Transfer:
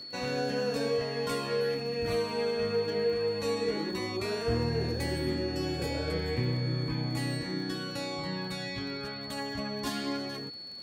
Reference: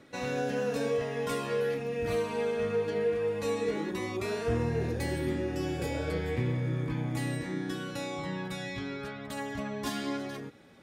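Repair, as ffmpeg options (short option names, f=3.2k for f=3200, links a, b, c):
-af "adeclick=t=4,bandreject=f=4.4k:w=30"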